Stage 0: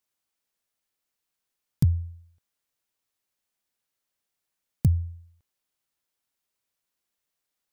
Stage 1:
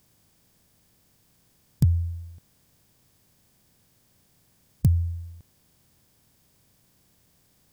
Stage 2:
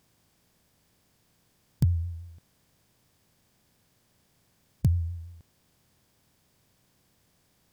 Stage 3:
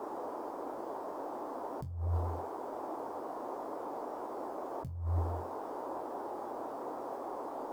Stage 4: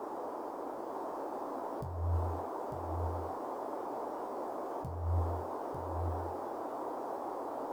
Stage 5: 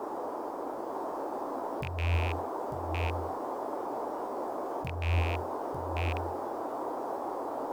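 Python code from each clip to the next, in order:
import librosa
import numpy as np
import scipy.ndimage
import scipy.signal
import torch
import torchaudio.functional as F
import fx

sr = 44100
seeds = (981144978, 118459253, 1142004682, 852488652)

y1 = fx.bin_compress(x, sr, power=0.6)
y2 = fx.high_shelf(y1, sr, hz=5800.0, db=-7.0)
y2 = fx.vibrato(y2, sr, rate_hz=5.9, depth_cents=53.0)
y2 = fx.low_shelf(y2, sr, hz=340.0, db=-4.0)
y3 = fx.resonator_bank(y2, sr, root=41, chord='fifth', decay_s=0.26)
y3 = fx.dmg_noise_band(y3, sr, seeds[0], low_hz=270.0, high_hz=1000.0, level_db=-54.0)
y3 = fx.over_compress(y3, sr, threshold_db=-42.0, ratio=-1.0)
y3 = y3 * librosa.db_to_amplitude(8.5)
y4 = y3 + 10.0 ** (-5.0 / 20.0) * np.pad(y3, (int(898 * sr / 1000.0), 0))[:len(y3)]
y5 = fx.rattle_buzz(y4, sr, strikes_db=-35.0, level_db=-28.0)
y5 = y5 * librosa.db_to_amplitude(4.0)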